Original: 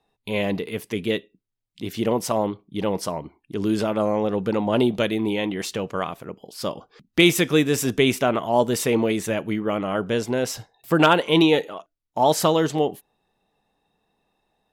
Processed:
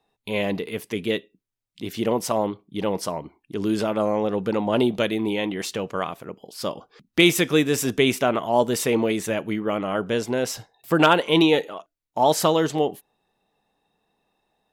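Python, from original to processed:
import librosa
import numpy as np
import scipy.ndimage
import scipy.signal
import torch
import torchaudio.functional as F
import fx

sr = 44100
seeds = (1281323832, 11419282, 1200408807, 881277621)

y = fx.low_shelf(x, sr, hz=130.0, db=-5.0)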